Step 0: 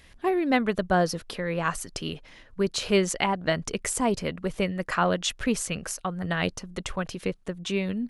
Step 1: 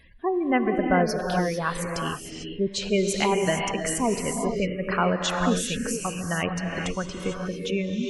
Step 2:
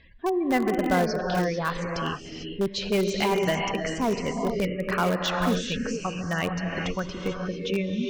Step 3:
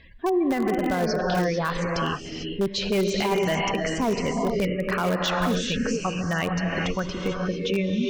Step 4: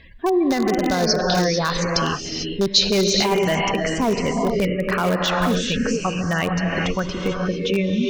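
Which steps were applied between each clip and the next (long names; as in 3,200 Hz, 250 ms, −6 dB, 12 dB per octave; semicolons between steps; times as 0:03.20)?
gate on every frequency bin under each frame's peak −20 dB strong; convolution reverb, pre-delay 3 ms, DRR 2 dB
inverse Chebyshev low-pass filter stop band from 10,000 Hz, stop band 40 dB; in parallel at −12 dB: wrap-around overflow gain 17 dB; on the sum: level −2 dB
brickwall limiter −20 dBFS, peak gain reduction 10 dB; level +4 dB
gain on a spectral selection 0:00.30–0:03.25, 3,500–7,000 Hz +10 dB; level +4 dB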